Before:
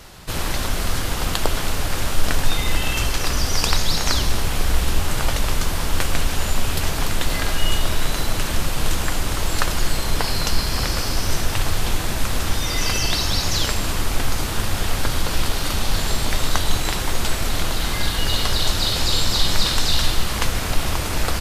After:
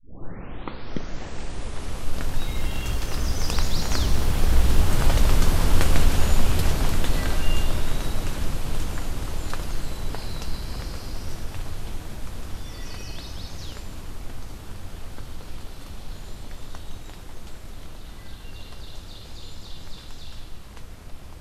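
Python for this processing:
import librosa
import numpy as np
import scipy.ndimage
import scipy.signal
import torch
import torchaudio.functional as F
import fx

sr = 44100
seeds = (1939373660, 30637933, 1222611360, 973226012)

y = fx.tape_start_head(x, sr, length_s=2.51)
y = fx.doppler_pass(y, sr, speed_mps=14, closest_m=18.0, pass_at_s=5.68)
y = fx.tilt_shelf(y, sr, db=4.0, hz=640.0)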